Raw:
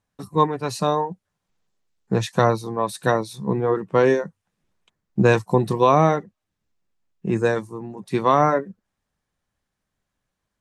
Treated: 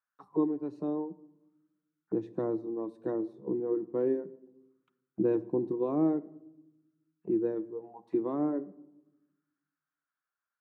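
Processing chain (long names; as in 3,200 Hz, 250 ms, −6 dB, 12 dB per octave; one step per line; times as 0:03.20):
envelope filter 320–1,400 Hz, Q 6.2, down, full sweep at −23 dBFS
on a send: convolution reverb RT60 0.95 s, pre-delay 6 ms, DRR 13.5 dB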